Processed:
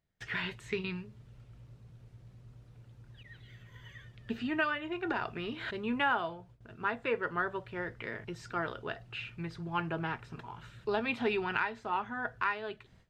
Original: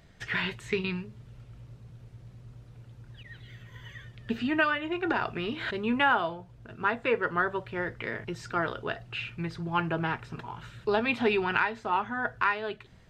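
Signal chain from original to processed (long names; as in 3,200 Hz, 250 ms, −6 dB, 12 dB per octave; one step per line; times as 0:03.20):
noise gate with hold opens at −44 dBFS
level −5.5 dB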